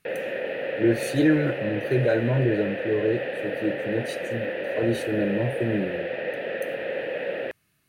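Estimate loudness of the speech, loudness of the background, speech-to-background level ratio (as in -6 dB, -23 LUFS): -26.0 LUFS, -30.0 LUFS, 4.0 dB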